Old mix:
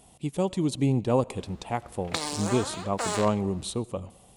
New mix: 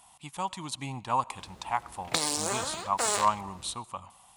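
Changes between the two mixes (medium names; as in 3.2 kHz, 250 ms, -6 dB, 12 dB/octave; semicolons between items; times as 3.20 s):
speech: add resonant low shelf 660 Hz -13 dB, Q 3; background: add treble shelf 6.5 kHz +9.5 dB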